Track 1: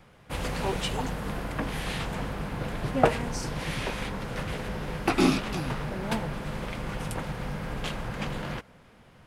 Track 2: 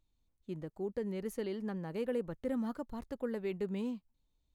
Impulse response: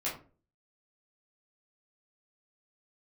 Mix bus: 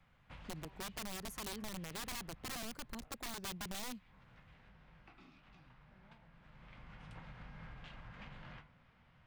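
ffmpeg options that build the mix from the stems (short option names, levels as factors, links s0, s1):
-filter_complex "[0:a]lowpass=3400,equalizer=f=400:w=0.95:g=-12,acompressor=threshold=0.0126:ratio=10,volume=0.668,afade=t=out:st=2.17:d=0.77:silence=0.375837,afade=t=in:st=6.39:d=0.77:silence=0.298538,asplit=2[s0][s1];[s1]volume=0.398[s2];[1:a]aeval=exprs='(mod(44.7*val(0)+1,2)-1)/44.7':c=same,volume=0.794,asplit=2[s3][s4];[s4]apad=whole_len=408531[s5];[s0][s5]sidechaincompress=threshold=0.00282:ratio=8:attack=16:release=272[s6];[2:a]atrim=start_sample=2205[s7];[s2][s7]afir=irnorm=-1:irlink=0[s8];[s6][s3][s8]amix=inputs=3:normalize=0,acrossover=split=180|3000[s9][s10][s11];[s10]acompressor=threshold=0.00501:ratio=6[s12];[s9][s12][s11]amix=inputs=3:normalize=0"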